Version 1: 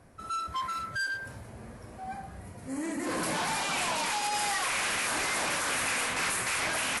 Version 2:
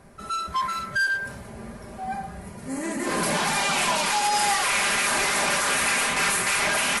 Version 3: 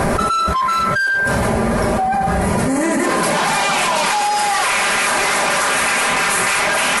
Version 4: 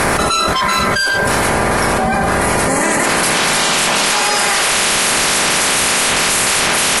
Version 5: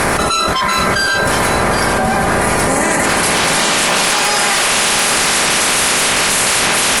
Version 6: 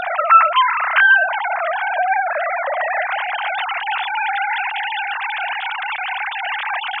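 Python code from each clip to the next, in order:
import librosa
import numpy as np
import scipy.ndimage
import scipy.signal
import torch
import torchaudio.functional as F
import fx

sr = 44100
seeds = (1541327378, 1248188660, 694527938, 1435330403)

y1 = x + 0.51 * np.pad(x, (int(5.0 * sr / 1000.0), 0))[:len(x)]
y1 = y1 * 10.0 ** (6.0 / 20.0)
y2 = fx.peak_eq(y1, sr, hz=780.0, db=5.0, octaves=2.7)
y2 = fx.env_flatten(y2, sr, amount_pct=100)
y3 = fx.spec_clip(y2, sr, under_db=16)
y3 = y3 * 10.0 ** (2.5 / 20.0)
y4 = y3 + 10.0 ** (-7.5 / 20.0) * np.pad(y3, (int(774 * sr / 1000.0), 0))[:len(y3)]
y4 = 10.0 ** (-4.5 / 20.0) * (np.abs((y4 / 10.0 ** (-4.5 / 20.0) + 3.0) % 4.0 - 2.0) - 1.0)
y5 = fx.sine_speech(y4, sr)
y5 = y5 * 10.0 ** (-5.0 / 20.0)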